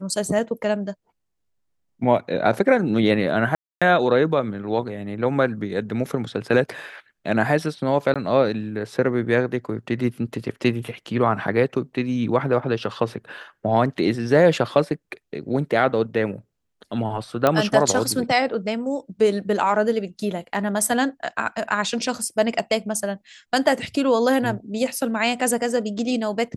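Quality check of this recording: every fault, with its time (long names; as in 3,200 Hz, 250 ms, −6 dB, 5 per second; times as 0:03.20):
0:03.55–0:03.82: drop-out 266 ms
0:08.14–0:08.16: drop-out 16 ms
0:17.47: click −5 dBFS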